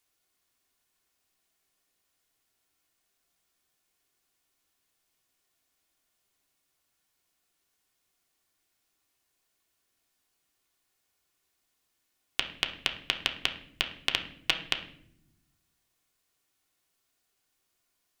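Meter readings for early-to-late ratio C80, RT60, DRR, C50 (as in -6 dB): 14.0 dB, not exponential, 2.0 dB, 10.5 dB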